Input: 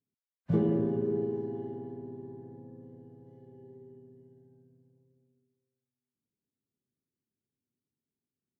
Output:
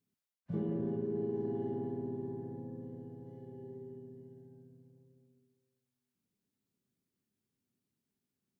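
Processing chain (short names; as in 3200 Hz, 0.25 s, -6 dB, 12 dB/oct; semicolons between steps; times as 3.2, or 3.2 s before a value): bell 190 Hz +6.5 dB 0.28 oct; de-hum 154.6 Hz, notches 10; reverse; compressor 8:1, threshold -36 dBFS, peak gain reduction 16.5 dB; reverse; gain +3.5 dB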